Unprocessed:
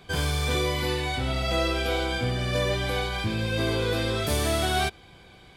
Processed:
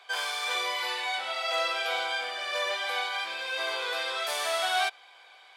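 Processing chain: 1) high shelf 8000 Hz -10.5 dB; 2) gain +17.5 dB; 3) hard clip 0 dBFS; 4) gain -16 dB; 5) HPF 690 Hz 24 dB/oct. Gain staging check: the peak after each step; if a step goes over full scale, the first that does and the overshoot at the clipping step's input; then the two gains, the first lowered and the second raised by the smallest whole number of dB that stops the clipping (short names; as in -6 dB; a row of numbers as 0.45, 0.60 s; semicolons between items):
-13.0, +4.5, 0.0, -16.0, -16.0 dBFS; step 2, 4.5 dB; step 2 +12.5 dB, step 4 -11 dB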